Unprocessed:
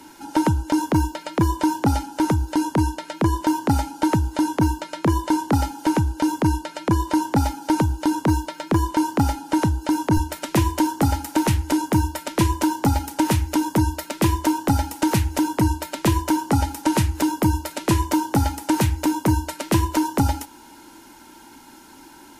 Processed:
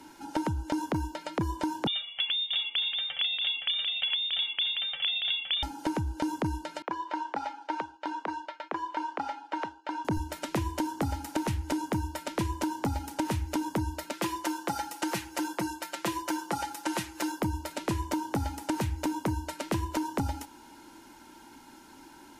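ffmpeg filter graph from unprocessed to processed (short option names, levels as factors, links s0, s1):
-filter_complex "[0:a]asettb=1/sr,asplit=3[s0][s1][s2];[s0]atrim=end=1.874[s3];[s1]atrim=start=1.87:end=5.63,asetpts=PTS-STARTPTS,afade=t=in:d=0.004:c=qsin,afade=t=out:st=3.756:d=0.004:c=qsin,aecho=1:1:633:0.562,atrim=end_sample=165816,lowpass=f=3100:t=q:w=0.5098,lowpass=f=3100:t=q:w=0.6013,lowpass=f=3100:t=q:w=0.9,lowpass=f=3100:t=q:w=2.563,afreqshift=-3700[s4];[s2]atrim=start=5.626[s5];[s3][s4]acrossfade=d=0.004:c1=hsin:c2=qsin[s6];[s6][s5]acrossfade=d=0.004:c1=qsin:c2=hsin,asettb=1/sr,asplit=3[s7][s8][s9];[s7]atrim=end=6.824[s10];[s8]atrim=start=6.82:end=10.05,asetpts=PTS-STARTPTS,afade=t=in:d=0.004:c=qsin,afade=t=out:st=3.226:d=0.004:c=qsin,highpass=660,lowpass=3000,agate=range=0.0224:threshold=0.01:ratio=3:release=100:detection=peak[s11];[s9]atrim=start=10.046[s12];[s10][s11]acrossfade=d=0.004:c1=hsin:c2=qsin[s13];[s13][s12]acrossfade=d=0.004:c1=qsin:c2=hsin,asettb=1/sr,asplit=3[s14][s15][s16];[s14]atrim=end=14.134[s17];[s15]atrim=start=14.13:end=17.4,asetpts=PTS-STARTPTS,afade=t=in:d=0.004:c=qsin,afade=t=out:st=3.266:d=0.004:c=qsin,highpass=f=630:p=1,aecho=1:1:5.8:0.67,atrim=end_sample=144207[s18];[s16]atrim=start=17.396[s19];[s17][s18]acrossfade=d=0.004:c1=hsin:c2=qsin[s20];[s20][s19]acrossfade=d=0.004:c1=qsin:c2=hsin,highshelf=f=8300:g=-6,acompressor=threshold=0.0891:ratio=6,volume=0.531"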